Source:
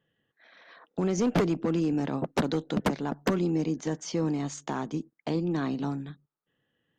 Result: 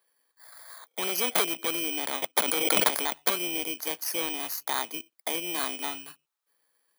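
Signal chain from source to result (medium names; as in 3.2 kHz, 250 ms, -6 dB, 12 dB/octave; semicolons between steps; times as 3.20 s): bit-reversed sample order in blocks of 16 samples; high-pass 890 Hz 12 dB/octave; 2.37–3.08 s: swell ahead of each attack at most 22 dB/s; trim +7.5 dB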